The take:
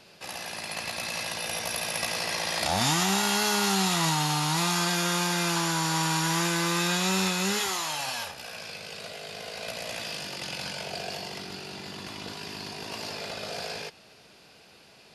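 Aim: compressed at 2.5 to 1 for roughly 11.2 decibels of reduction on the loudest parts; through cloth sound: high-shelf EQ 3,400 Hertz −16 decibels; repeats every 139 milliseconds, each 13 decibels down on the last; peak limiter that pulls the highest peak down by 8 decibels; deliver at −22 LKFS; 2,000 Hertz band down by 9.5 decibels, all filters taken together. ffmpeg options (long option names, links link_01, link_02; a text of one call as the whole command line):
ffmpeg -i in.wav -af "equalizer=frequency=2000:width_type=o:gain=-7.5,acompressor=threshold=-40dB:ratio=2.5,alimiter=level_in=8dB:limit=-24dB:level=0:latency=1,volume=-8dB,highshelf=frequency=3400:gain=-16,aecho=1:1:139|278|417:0.224|0.0493|0.0108,volume=23dB" out.wav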